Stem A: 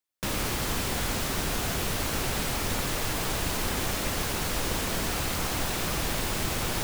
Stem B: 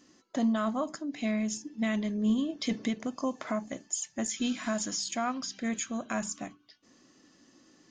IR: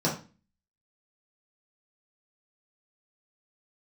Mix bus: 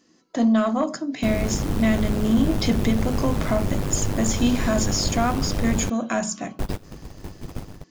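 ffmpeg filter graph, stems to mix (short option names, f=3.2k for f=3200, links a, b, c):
-filter_complex "[0:a]tiltshelf=f=770:g=9,tremolo=f=100:d=0.824,adelay=1000,volume=-5dB,asplit=3[a][b][c];[a]atrim=end=5.9,asetpts=PTS-STARTPTS,afade=t=out:st=5.896:d=0.004:c=hsin[d];[b]atrim=start=5.9:end=6.59,asetpts=PTS-STARTPTS,volume=0[e];[c]atrim=start=6.59,asetpts=PTS-STARTPTS,afade=t=in:d=0.004:c=hsin[f];[d][e][f]concat=n=3:v=0:a=1[g];[1:a]volume=-1.5dB,asplit=3[h][i][j];[i]volume=-20dB[k];[j]apad=whole_len=345606[l];[g][l]sidechaingate=range=-22dB:threshold=-59dB:ratio=16:detection=peak[m];[2:a]atrim=start_sample=2205[n];[k][n]afir=irnorm=-1:irlink=0[o];[m][h][o]amix=inputs=3:normalize=0,dynaudnorm=f=130:g=5:m=9dB,asoftclip=type=tanh:threshold=-10dB"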